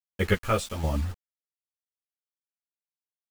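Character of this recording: chopped level 1.2 Hz, depth 60%, duty 40%; a quantiser's noise floor 8-bit, dither none; a shimmering, thickened sound

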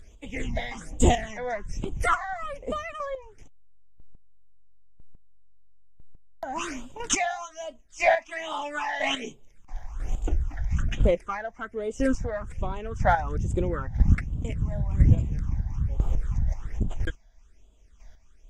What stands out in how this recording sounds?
phasing stages 8, 1.2 Hz, lowest notch 350–1800 Hz; chopped level 1 Hz, depth 65%, duty 15%; Vorbis

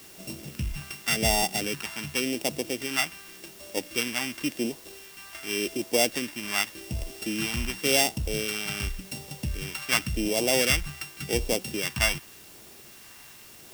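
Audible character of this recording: a buzz of ramps at a fixed pitch in blocks of 16 samples; phasing stages 2, 0.89 Hz, lowest notch 460–1400 Hz; a quantiser's noise floor 8-bit, dither triangular

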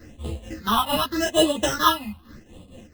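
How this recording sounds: aliases and images of a low sample rate 2.3 kHz, jitter 0%; phasing stages 6, 0.85 Hz, lowest notch 440–1600 Hz; tremolo triangle 4.4 Hz, depth 80%; a shimmering, thickened sound

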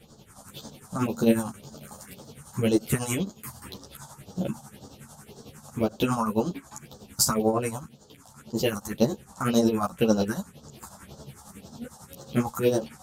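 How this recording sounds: phasing stages 4, 1.9 Hz, lowest notch 370–2400 Hz; tremolo triangle 11 Hz, depth 75%; a shimmering, thickened sound

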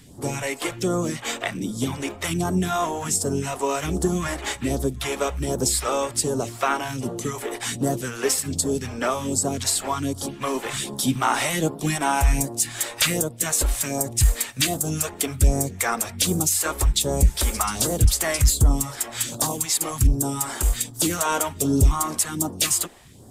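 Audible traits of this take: phasing stages 2, 1.3 Hz, lowest notch 110–2300 Hz

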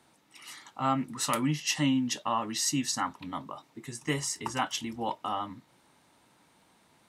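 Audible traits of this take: noise floor -65 dBFS; spectral tilt -3.5 dB/octave

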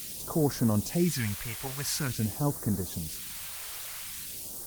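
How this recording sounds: a quantiser's noise floor 6-bit, dither triangular; phasing stages 2, 0.47 Hz, lowest notch 220–2600 Hz; Opus

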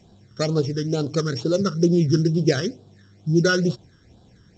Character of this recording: a buzz of ramps at a fixed pitch in blocks of 8 samples; phasing stages 12, 2.2 Hz, lowest notch 730–2100 Hz; G.722

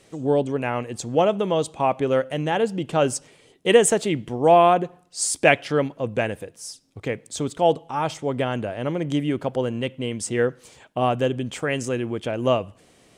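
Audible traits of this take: noise floor -56 dBFS; spectral tilt -4.5 dB/octave

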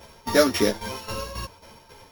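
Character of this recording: a buzz of ramps at a fixed pitch in blocks of 8 samples; tremolo saw down 3.7 Hz, depth 75%; a shimmering, thickened sound

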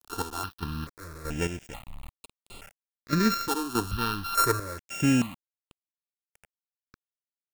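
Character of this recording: a buzz of ramps at a fixed pitch in blocks of 32 samples; chopped level 1.6 Hz, depth 65%, duty 35%; a quantiser's noise floor 8-bit, dither none; notches that jump at a steady rate 2.3 Hz 570–5800 Hz

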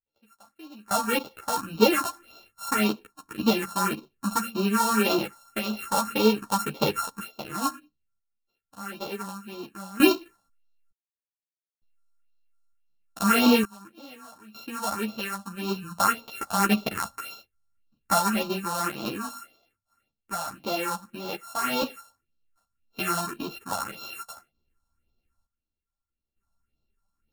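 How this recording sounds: a buzz of ramps at a fixed pitch in blocks of 32 samples; phasing stages 4, 1.8 Hz, lowest notch 360–1800 Hz; random-step tremolo 1.1 Hz, depth 100%; a shimmering, thickened sound

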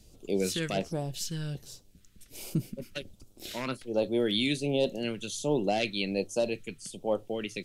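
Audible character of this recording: phasing stages 2, 1.3 Hz, lowest notch 690–1800 Hz; Opus

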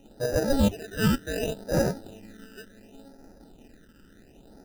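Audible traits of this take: aliases and images of a low sample rate 1.1 kHz, jitter 0%; phasing stages 12, 0.69 Hz, lowest notch 700–3100 Hz

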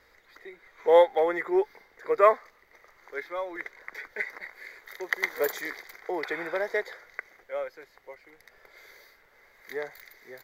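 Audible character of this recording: noise floor -62 dBFS; spectral tilt -3.0 dB/octave

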